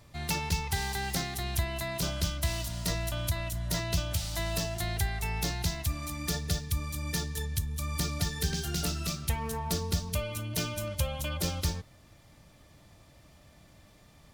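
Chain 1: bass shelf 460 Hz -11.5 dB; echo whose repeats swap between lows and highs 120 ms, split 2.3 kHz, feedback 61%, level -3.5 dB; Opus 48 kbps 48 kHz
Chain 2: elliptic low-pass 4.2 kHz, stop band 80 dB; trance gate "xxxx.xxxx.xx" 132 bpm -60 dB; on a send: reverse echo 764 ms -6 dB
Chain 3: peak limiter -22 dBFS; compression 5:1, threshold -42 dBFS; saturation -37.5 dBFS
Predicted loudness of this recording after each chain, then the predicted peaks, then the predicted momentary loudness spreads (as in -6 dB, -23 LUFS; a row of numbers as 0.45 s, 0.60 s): -34.0 LUFS, -34.5 LUFS, -46.0 LUFS; -18.5 dBFS, -17.5 dBFS, -37.5 dBFS; 4 LU, 4 LU, 13 LU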